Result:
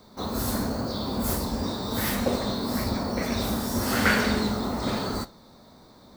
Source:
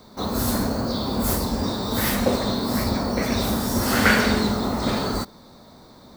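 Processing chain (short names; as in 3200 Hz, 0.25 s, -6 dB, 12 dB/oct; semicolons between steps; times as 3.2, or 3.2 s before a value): flange 1 Hz, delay 9.7 ms, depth 5.1 ms, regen -74%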